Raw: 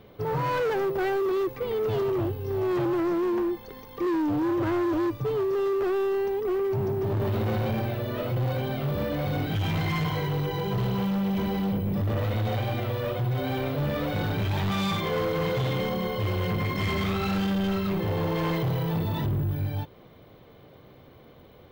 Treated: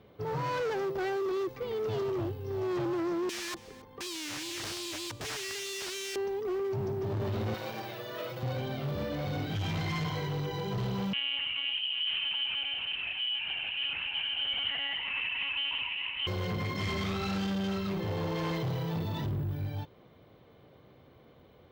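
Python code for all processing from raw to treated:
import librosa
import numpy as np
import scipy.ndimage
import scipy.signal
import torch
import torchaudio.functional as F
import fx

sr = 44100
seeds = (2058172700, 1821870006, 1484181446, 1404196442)

y = fx.chain(x, sr, fx.high_shelf(hz=2500.0, db=-10.5),
    fx.overflow_wrap(gain_db=28.0),
    fx.echo_single(ms=275, db=-18.5), at=(3.29, 6.16))
y = fx.chain(y, sr, fx.highpass(hz=550.0, slope=6),
    fx.high_shelf(hz=8600.0, db=5.5),
    fx.comb(ms=6.2, depth=0.65), at=(7.54, 8.43))
y = fx.chain(y, sr, fx.ring_mod(carrier_hz=31.0),
    fx.freq_invert(carrier_hz=3100),
    fx.lpc_monotone(seeds[0], pitch_hz=280.0, order=10), at=(11.13, 16.27))
y = fx.dynamic_eq(y, sr, hz=5700.0, q=0.94, threshold_db=-55.0, ratio=4.0, max_db=7)
y = scipy.signal.sosfilt(scipy.signal.butter(2, 42.0, 'highpass', fs=sr, output='sos'), y)
y = fx.high_shelf(y, sr, hz=12000.0, db=-8.5)
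y = y * 10.0 ** (-6.0 / 20.0)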